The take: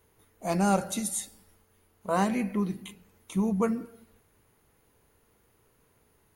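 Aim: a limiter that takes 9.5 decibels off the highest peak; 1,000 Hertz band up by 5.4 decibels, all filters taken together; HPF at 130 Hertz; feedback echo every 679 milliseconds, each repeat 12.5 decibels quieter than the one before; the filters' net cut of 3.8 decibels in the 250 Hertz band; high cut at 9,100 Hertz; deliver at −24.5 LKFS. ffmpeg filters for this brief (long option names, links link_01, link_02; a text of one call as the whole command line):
ffmpeg -i in.wav -af "highpass=130,lowpass=9100,equalizer=frequency=250:width_type=o:gain=-4.5,equalizer=frequency=1000:width_type=o:gain=7.5,alimiter=limit=-17.5dB:level=0:latency=1,aecho=1:1:679|1358|2037:0.237|0.0569|0.0137,volume=8.5dB" out.wav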